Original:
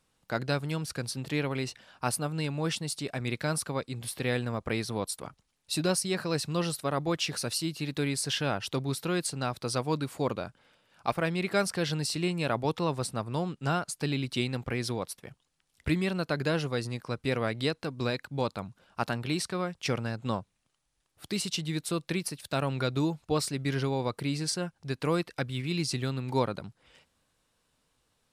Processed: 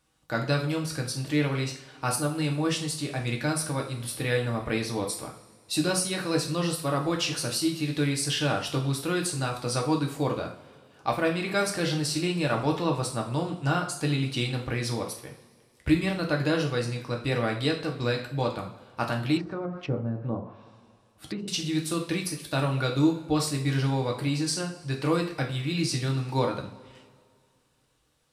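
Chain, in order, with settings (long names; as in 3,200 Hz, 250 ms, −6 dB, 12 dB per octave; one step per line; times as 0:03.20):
coupled-rooms reverb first 0.43 s, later 2.2 s, from −20 dB, DRR 0.5 dB
0:19.37–0:21.48: treble cut that deepens with the level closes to 590 Hz, closed at −26.5 dBFS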